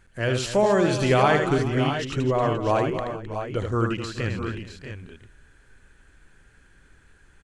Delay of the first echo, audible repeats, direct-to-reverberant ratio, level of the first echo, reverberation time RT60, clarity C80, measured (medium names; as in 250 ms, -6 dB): 78 ms, 4, no reverb, -5.5 dB, no reverb, no reverb